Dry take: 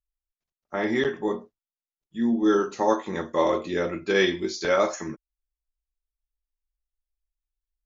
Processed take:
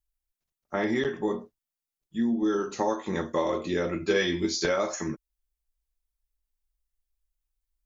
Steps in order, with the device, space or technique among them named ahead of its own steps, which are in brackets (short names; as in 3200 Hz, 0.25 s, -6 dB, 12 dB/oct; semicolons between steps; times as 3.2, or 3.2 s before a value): ASMR close-microphone chain (low shelf 240 Hz +5 dB; compressor, threshold -23 dBFS, peak gain reduction 8.5 dB; high shelf 6300 Hz +6.5 dB); 3.99–4.66 doubler 12 ms -2.5 dB